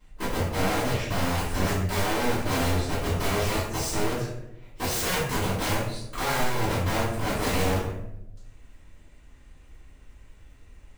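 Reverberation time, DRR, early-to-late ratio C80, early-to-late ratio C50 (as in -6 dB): 0.85 s, -14.5 dB, 4.5 dB, 1.0 dB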